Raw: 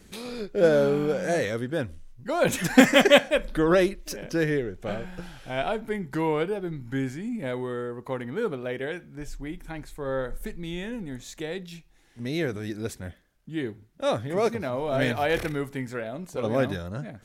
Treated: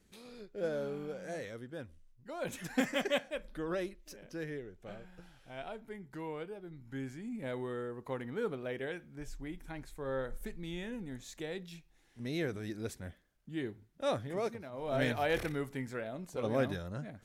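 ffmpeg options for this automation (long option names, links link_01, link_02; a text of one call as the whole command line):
ffmpeg -i in.wav -af "volume=3.5dB,afade=type=in:start_time=6.7:duration=0.92:silence=0.375837,afade=type=out:start_time=14.15:duration=0.56:silence=0.298538,afade=type=in:start_time=14.71:duration=0.22:silence=0.281838" out.wav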